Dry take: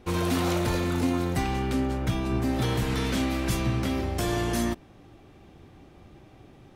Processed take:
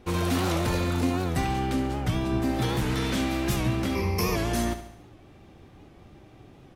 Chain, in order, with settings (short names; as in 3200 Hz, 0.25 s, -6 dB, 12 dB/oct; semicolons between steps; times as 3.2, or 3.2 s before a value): 0.83–2.88 added noise brown -54 dBFS; 3.95–4.36 ripple EQ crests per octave 0.84, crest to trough 17 dB; feedback echo 70 ms, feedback 53%, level -11 dB; record warp 78 rpm, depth 100 cents